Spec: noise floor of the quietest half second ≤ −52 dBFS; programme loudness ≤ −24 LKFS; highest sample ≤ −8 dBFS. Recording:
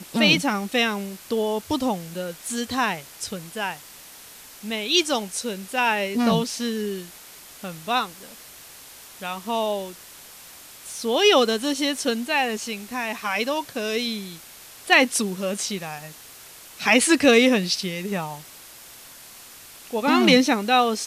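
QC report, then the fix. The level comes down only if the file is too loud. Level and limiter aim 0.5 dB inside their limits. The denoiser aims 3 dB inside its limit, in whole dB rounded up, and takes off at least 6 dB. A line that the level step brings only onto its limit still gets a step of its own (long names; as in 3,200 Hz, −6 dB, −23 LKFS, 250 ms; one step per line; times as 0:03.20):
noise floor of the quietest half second −45 dBFS: out of spec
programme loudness −22.5 LKFS: out of spec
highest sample −5.0 dBFS: out of spec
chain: broadband denoise 8 dB, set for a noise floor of −45 dBFS
level −2 dB
brickwall limiter −8.5 dBFS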